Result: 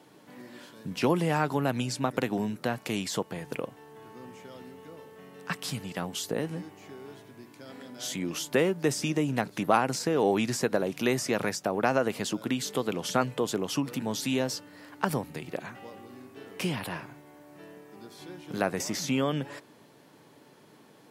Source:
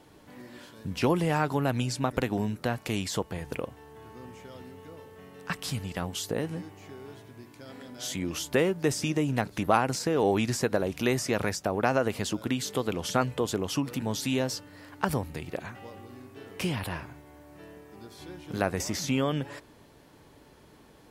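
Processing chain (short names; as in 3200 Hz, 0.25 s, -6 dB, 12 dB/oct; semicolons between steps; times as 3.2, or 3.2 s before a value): HPF 130 Hz 24 dB/oct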